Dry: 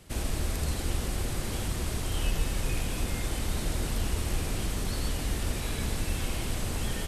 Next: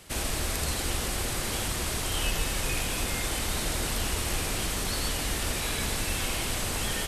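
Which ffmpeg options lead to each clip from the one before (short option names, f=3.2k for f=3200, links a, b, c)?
-af "lowshelf=f=430:g=-10,volume=7dB"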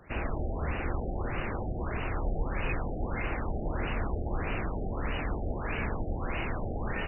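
-af "afftfilt=real='re*lt(b*sr/1024,790*pow(3000/790,0.5+0.5*sin(2*PI*1.6*pts/sr)))':imag='im*lt(b*sr/1024,790*pow(3000/790,0.5+0.5*sin(2*PI*1.6*pts/sr)))':win_size=1024:overlap=0.75"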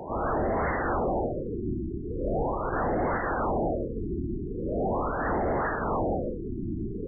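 -filter_complex "[0:a]asplit=2[a][b];[b]highpass=f=720:p=1,volume=33dB,asoftclip=type=tanh:threshold=-19dB[c];[a][c]amix=inputs=2:normalize=0,lowpass=f=1.4k:p=1,volume=-6dB,afftfilt=real='re*lt(b*sr/1024,380*pow(2200/380,0.5+0.5*sin(2*PI*0.41*pts/sr)))':imag='im*lt(b*sr/1024,380*pow(2200/380,0.5+0.5*sin(2*PI*0.41*pts/sr)))':win_size=1024:overlap=0.75"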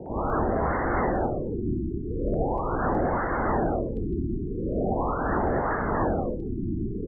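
-filter_complex "[0:a]asoftclip=type=hard:threshold=-19.5dB,acrossover=split=550|1900[a][b][c];[b]adelay=60[d];[c]adelay=300[e];[a][d][e]amix=inputs=3:normalize=0,volume=3.5dB"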